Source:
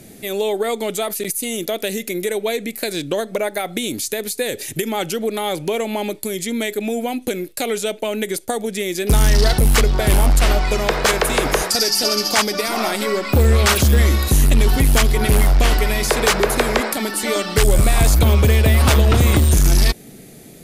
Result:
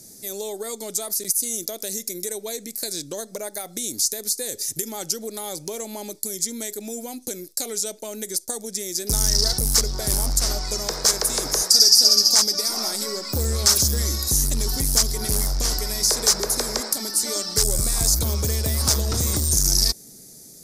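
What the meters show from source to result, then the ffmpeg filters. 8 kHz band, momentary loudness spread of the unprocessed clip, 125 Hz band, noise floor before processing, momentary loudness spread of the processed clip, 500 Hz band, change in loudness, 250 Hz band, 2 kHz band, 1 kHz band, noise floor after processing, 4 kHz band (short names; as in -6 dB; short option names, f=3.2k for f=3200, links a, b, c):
+4.5 dB, 10 LU, -11.0 dB, -41 dBFS, 14 LU, -11.5 dB, -2.5 dB, -11.0 dB, -14.5 dB, -12.5 dB, -45 dBFS, +2.0 dB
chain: -af "highshelf=f=3.9k:t=q:w=3:g=11.5,bandreject=f=710:w=21,volume=-11dB"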